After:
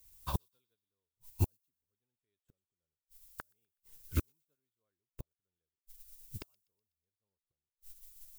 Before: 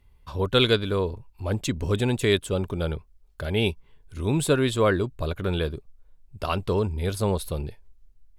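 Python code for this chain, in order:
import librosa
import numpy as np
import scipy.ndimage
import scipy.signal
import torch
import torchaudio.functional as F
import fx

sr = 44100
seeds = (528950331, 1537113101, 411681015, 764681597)

p1 = fx.high_shelf(x, sr, hz=10000.0, db=-3.0)
p2 = fx.dmg_noise_colour(p1, sr, seeds[0], colour='violet', level_db=-48.0)
p3 = fx.gate_flip(p2, sr, shuts_db=-24.0, range_db=-39)
p4 = p3 + fx.echo_wet_highpass(p3, sr, ms=124, feedback_pct=64, hz=3800.0, wet_db=-6.0, dry=0)
p5 = fx.upward_expand(p4, sr, threshold_db=-58.0, expansion=2.5)
y = p5 * 10.0 ** (9.5 / 20.0)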